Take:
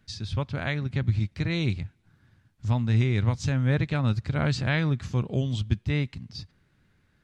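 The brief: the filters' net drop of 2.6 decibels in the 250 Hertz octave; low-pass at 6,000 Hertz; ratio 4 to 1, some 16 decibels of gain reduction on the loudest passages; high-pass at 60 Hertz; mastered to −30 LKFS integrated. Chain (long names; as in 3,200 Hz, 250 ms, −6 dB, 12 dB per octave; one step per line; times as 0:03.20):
high-pass filter 60 Hz
low-pass filter 6,000 Hz
parametric band 250 Hz −4 dB
downward compressor 4 to 1, threshold −40 dBFS
level +12 dB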